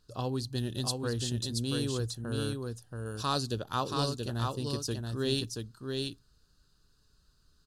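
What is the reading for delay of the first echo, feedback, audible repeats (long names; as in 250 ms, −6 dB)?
679 ms, repeats not evenly spaced, 1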